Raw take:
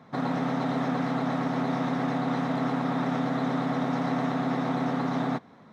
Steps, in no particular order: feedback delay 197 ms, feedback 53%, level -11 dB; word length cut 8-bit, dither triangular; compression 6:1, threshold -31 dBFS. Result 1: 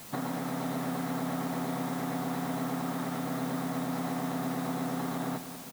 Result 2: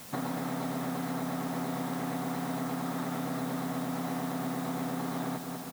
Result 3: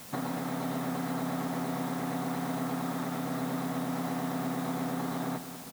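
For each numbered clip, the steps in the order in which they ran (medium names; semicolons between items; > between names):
compression > word length cut > feedback delay; feedback delay > compression > word length cut; compression > feedback delay > word length cut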